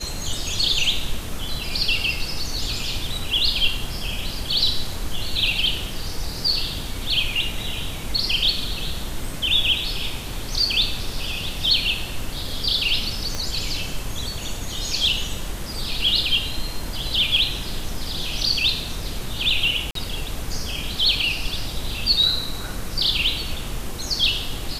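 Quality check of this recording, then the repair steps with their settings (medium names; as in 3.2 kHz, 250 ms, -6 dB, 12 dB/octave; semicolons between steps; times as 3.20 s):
13.35 s: pop -12 dBFS
19.91–19.95 s: dropout 43 ms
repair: de-click; interpolate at 19.91 s, 43 ms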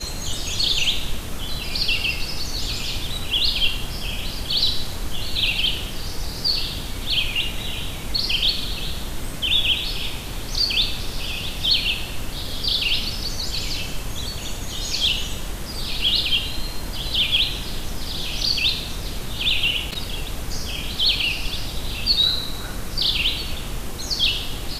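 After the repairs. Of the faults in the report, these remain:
13.35 s: pop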